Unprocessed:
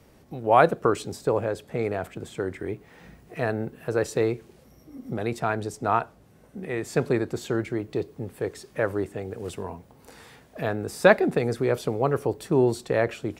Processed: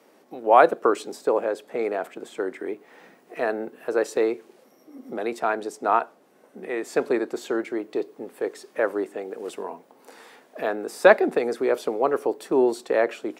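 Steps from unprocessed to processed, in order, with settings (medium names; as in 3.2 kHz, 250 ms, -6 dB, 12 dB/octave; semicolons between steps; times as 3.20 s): high-pass 250 Hz 24 dB/octave; peaking EQ 780 Hz +4.5 dB 2.9 oct; trim -1.5 dB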